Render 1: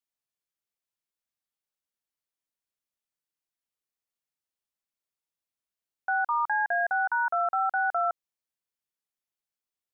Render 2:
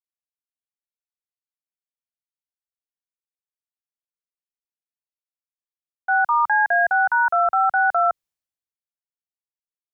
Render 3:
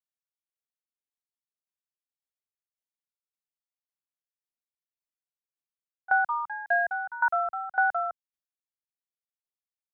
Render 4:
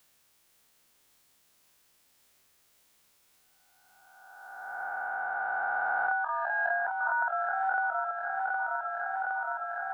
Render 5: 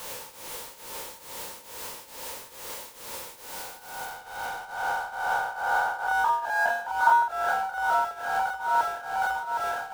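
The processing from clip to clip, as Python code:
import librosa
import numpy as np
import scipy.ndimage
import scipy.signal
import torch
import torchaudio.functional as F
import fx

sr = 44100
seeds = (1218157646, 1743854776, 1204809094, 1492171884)

y1 = fx.band_widen(x, sr, depth_pct=70)
y1 = y1 * librosa.db_to_amplitude(8.0)
y2 = fx.transient(y1, sr, attack_db=3, sustain_db=-4)
y2 = fx.tremolo_decay(y2, sr, direction='decaying', hz=1.8, depth_db=19)
y2 = y2 * librosa.db_to_amplitude(-3.0)
y3 = fx.spec_swells(y2, sr, rise_s=1.89)
y3 = fx.echo_feedback(y3, sr, ms=764, feedback_pct=51, wet_db=-11.0)
y3 = fx.band_squash(y3, sr, depth_pct=100)
y3 = y3 * librosa.db_to_amplitude(-4.5)
y4 = y3 + 0.5 * 10.0 ** (-33.5 / 20.0) * np.sign(y3)
y4 = fx.small_body(y4, sr, hz=(510.0, 910.0), ring_ms=30, db=14)
y4 = fx.tremolo_shape(y4, sr, shape='triangle', hz=2.3, depth_pct=85)
y4 = y4 * librosa.db_to_amplitude(2.0)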